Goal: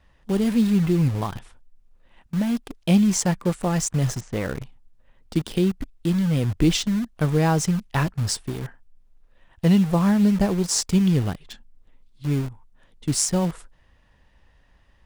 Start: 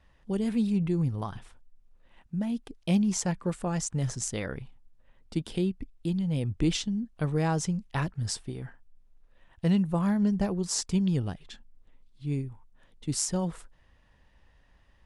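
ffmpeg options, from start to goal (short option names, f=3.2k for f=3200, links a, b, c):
-filter_complex "[0:a]asplit=3[a][b][c];[a]afade=t=out:st=4.19:d=0.02[d];[b]lowpass=2k,afade=t=in:st=4.19:d=0.02,afade=t=out:st=4.61:d=0.02[e];[c]afade=t=in:st=4.61:d=0.02[f];[d][e][f]amix=inputs=3:normalize=0,asplit=2[g][h];[h]acrusher=bits=5:mix=0:aa=0.000001,volume=-5.5dB[i];[g][i]amix=inputs=2:normalize=0,volume=3.5dB"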